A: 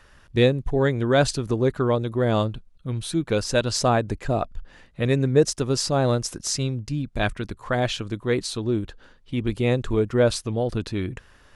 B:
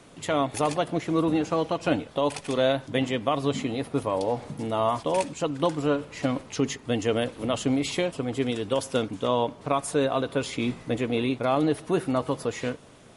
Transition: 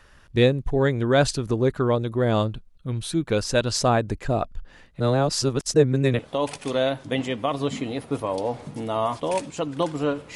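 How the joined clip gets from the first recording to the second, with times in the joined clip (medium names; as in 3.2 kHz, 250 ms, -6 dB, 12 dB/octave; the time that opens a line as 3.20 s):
A
5.00–6.19 s: reverse
6.19 s: go over to B from 2.02 s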